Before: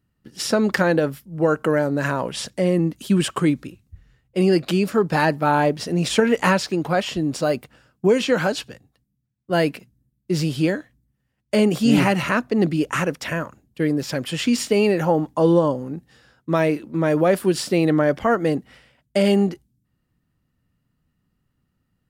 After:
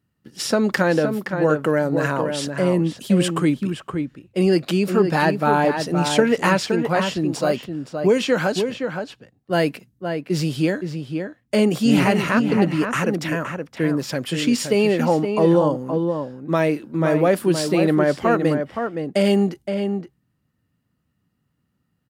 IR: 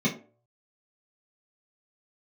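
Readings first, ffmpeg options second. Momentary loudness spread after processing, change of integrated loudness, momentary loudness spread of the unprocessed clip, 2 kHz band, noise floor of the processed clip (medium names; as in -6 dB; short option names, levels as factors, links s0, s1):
10 LU, +0.5 dB, 9 LU, +0.5 dB, -71 dBFS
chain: -filter_complex "[0:a]highpass=79,asplit=2[s0][s1];[s1]adelay=519,volume=0.501,highshelf=f=4000:g=-11.7[s2];[s0][s2]amix=inputs=2:normalize=0"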